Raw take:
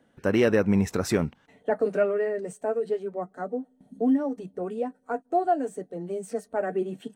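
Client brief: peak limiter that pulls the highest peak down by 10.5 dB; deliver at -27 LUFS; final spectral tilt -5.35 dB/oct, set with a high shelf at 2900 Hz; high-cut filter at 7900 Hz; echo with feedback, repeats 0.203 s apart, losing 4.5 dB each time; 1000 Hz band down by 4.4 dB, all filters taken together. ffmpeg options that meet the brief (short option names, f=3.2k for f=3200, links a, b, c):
-af "lowpass=7.9k,equalizer=f=1k:t=o:g=-9,highshelf=f=2.9k:g=7.5,alimiter=limit=-21dB:level=0:latency=1,aecho=1:1:203|406|609|812|1015|1218|1421|1624|1827:0.596|0.357|0.214|0.129|0.0772|0.0463|0.0278|0.0167|0.01,volume=3.5dB"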